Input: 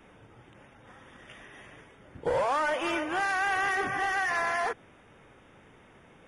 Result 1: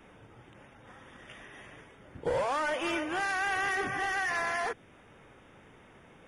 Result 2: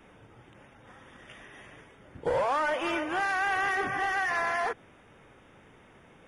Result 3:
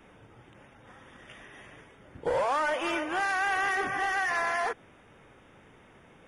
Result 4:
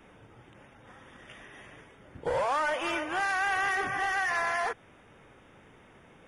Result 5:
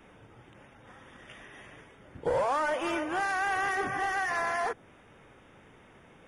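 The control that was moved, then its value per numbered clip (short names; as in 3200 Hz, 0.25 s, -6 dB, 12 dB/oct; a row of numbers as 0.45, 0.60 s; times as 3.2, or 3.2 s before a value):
dynamic EQ, frequency: 940, 8400, 110, 280, 2800 Hz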